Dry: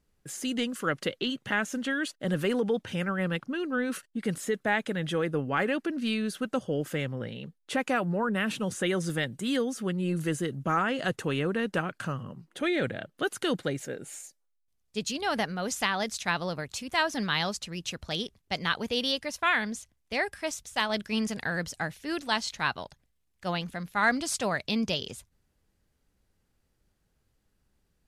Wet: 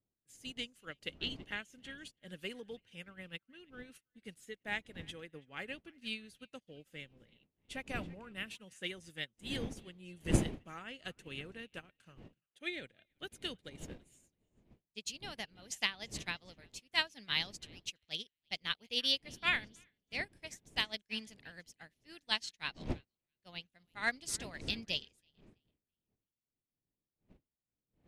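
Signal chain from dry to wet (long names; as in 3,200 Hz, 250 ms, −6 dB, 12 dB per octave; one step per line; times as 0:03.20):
wind on the microphone 280 Hz −35 dBFS
high shelf with overshoot 1,800 Hz +8 dB, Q 1.5
on a send: feedback echo with a band-pass in the loop 330 ms, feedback 45%, band-pass 2,600 Hz, level −15 dB
on the sum: expander for the loud parts 2.5 to 1, over −44 dBFS
level −6 dB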